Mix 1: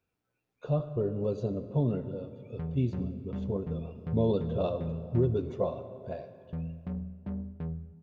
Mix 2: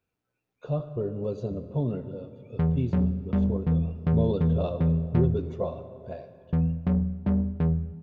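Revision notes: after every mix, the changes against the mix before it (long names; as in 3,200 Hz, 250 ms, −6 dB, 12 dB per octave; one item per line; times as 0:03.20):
background +12.0 dB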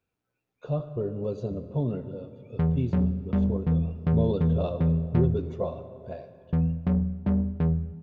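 nothing changed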